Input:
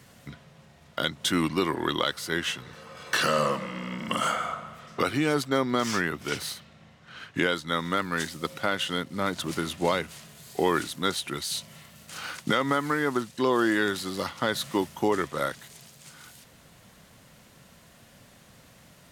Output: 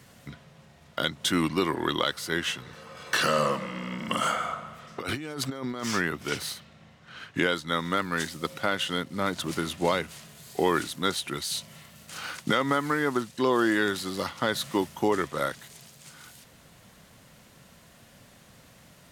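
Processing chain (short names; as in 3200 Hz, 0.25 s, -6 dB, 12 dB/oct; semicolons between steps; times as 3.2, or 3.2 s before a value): 4.98–5.84 negative-ratio compressor -34 dBFS, ratio -1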